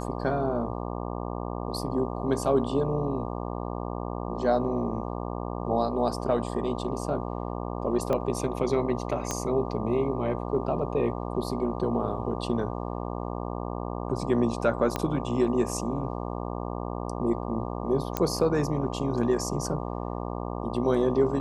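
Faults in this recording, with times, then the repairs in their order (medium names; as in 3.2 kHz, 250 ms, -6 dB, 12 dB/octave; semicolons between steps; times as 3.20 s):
buzz 60 Hz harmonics 20 -33 dBFS
8.13 s: pop -16 dBFS
9.31 s: pop -14 dBFS
14.96 s: pop -13 dBFS
18.17 s: pop -11 dBFS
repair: de-click; de-hum 60 Hz, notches 20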